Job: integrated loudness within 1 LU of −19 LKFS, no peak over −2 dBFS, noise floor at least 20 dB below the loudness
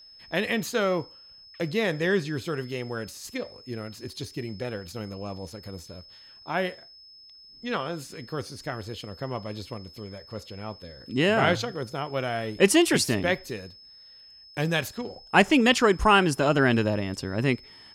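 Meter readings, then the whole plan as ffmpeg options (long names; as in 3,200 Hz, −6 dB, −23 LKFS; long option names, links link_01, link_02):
interfering tone 5,200 Hz; level of the tone −48 dBFS; integrated loudness −26.0 LKFS; sample peak −5.0 dBFS; target loudness −19.0 LKFS
→ -af "bandreject=frequency=5200:width=30"
-af "volume=7dB,alimiter=limit=-2dB:level=0:latency=1"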